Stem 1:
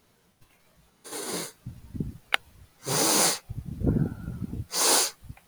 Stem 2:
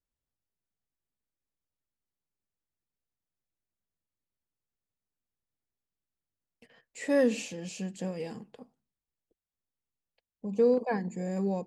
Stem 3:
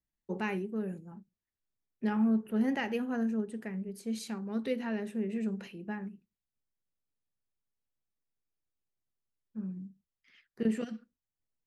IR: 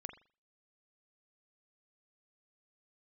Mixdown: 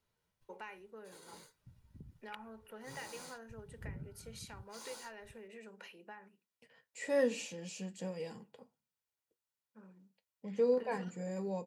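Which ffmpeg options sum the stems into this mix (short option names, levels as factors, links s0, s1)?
-filter_complex "[0:a]acrossover=split=180[s0][s1];[s1]acompressor=threshold=0.0178:ratio=2[s2];[s0][s2]amix=inputs=2:normalize=0,highshelf=f=7800:g=-6.5,volume=0.119[s3];[1:a]highpass=110,flanger=delay=9:depth=3.6:regen=-60:speed=0.22:shape=triangular,volume=0.944[s4];[2:a]highpass=690,tiltshelf=f=970:g=3.5,acompressor=threshold=0.00316:ratio=3,adelay=200,volume=1.26[s5];[s3][s4][s5]amix=inputs=3:normalize=0,equalizer=f=380:t=o:w=0.9:g=-5,aecho=1:1:2.1:0.34"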